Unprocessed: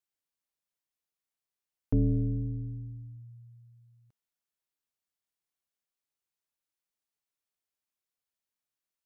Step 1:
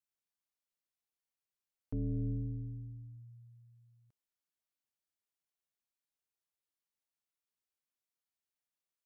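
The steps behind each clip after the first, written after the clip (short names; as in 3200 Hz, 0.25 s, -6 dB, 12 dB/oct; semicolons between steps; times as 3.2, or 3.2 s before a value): limiter -26 dBFS, peak gain reduction 7 dB; gain -5 dB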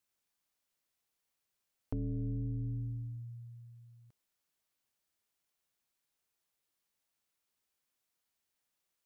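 compressor 10:1, threshold -42 dBFS, peak gain reduction 9.5 dB; gain +8 dB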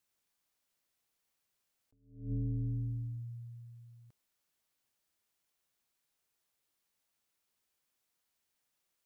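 attack slew limiter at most 120 dB/s; gain +2 dB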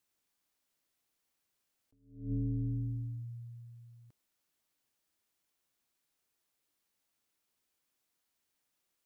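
bell 290 Hz +4 dB 0.68 oct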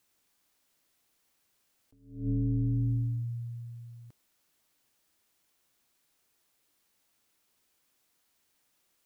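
limiter -32.5 dBFS, peak gain reduction 4.5 dB; gain +8.5 dB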